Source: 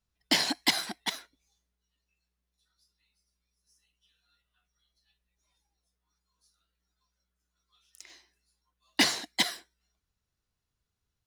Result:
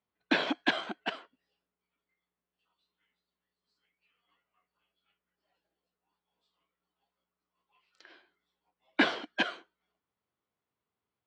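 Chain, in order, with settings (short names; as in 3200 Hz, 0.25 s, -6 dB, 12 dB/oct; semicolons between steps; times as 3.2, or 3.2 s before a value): Bessel high-pass 350 Hz, order 2; formant shift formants -4 st; tape spacing loss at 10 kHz 38 dB; gain +6 dB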